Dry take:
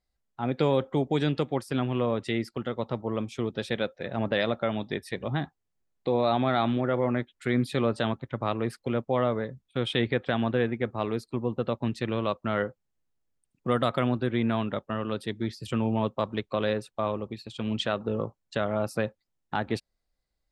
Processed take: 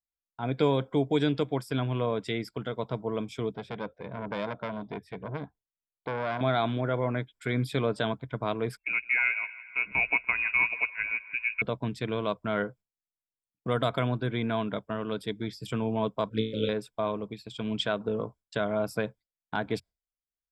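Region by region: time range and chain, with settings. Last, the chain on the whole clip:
3.55–6.41 LPF 1100 Hz 6 dB/oct + core saturation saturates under 1200 Hz
8.77–11.62 analogue delay 0.16 s, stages 2048, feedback 71%, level -14 dB + inverted band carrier 2700 Hz + upward expander, over -36 dBFS
16.29–16.69 flutter echo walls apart 3.1 m, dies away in 0.5 s + envelope flanger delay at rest 2.2 ms, full sweep at -23.5 dBFS + brick-wall FIR band-stop 590–1300 Hz
whole clip: gate with hold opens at -51 dBFS; ripple EQ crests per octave 1.7, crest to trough 8 dB; gain -2 dB

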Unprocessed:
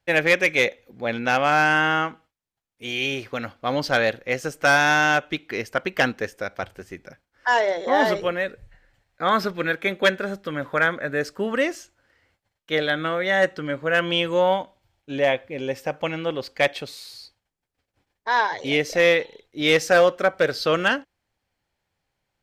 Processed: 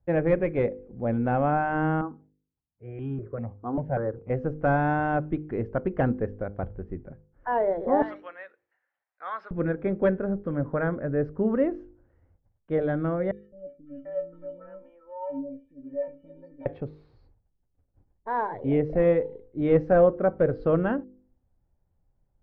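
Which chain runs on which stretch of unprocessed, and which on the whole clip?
2.01–4.3 HPF 77 Hz + air absorption 360 m + step phaser 5.1 Hz 570–2100 Hz
8.02–9.51 HPF 1300 Hz + tilt +3 dB/oct
13.31–16.66 metallic resonator 270 Hz, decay 0.33 s, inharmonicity 0.03 + three bands offset in time highs, lows, mids 0.21/0.74 s, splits 410/2600 Hz
whole clip: LPF 1200 Hz 12 dB/oct; tilt -4.5 dB/oct; de-hum 50.84 Hz, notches 10; gain -5.5 dB

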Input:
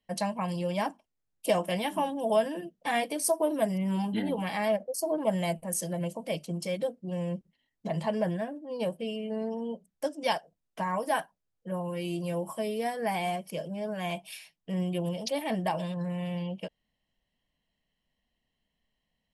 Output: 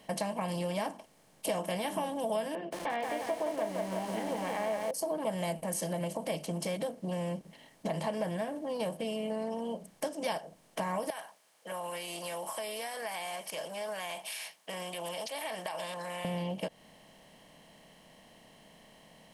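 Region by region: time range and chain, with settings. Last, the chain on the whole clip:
2.55–4.91 BPF 360–2300 Hz + air absorption 190 m + lo-fi delay 0.173 s, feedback 55%, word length 8-bit, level -5.5 dB
11.1–16.25 HPF 1100 Hz + compressor 4:1, threshold -44 dBFS
whole clip: per-bin compression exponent 0.6; compressor 2.5:1, threshold -34 dBFS

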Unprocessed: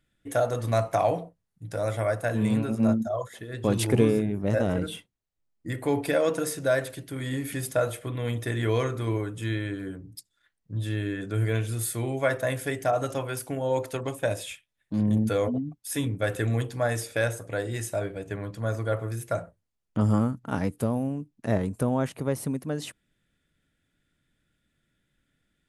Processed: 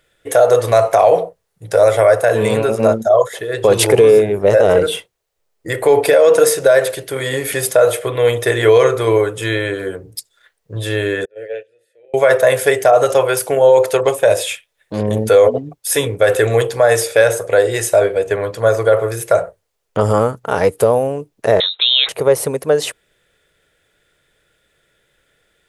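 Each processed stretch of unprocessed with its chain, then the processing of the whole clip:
11.25–12.14 gate -25 dBFS, range -24 dB + vowel filter e
21.6–22.09 low shelf 340 Hz -8 dB + inverted band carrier 3900 Hz
whole clip: resonant low shelf 340 Hz -9 dB, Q 3; maximiser +16.5 dB; gain -1 dB

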